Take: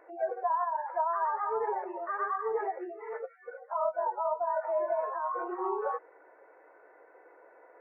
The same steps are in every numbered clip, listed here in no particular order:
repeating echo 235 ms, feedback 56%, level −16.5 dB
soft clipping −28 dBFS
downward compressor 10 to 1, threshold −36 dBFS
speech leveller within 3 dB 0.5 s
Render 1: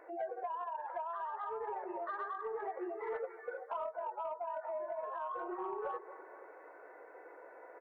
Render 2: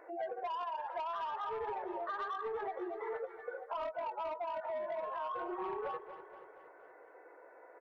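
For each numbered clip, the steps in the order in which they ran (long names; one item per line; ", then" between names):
downward compressor, then repeating echo, then speech leveller, then soft clipping
soft clipping, then repeating echo, then speech leveller, then downward compressor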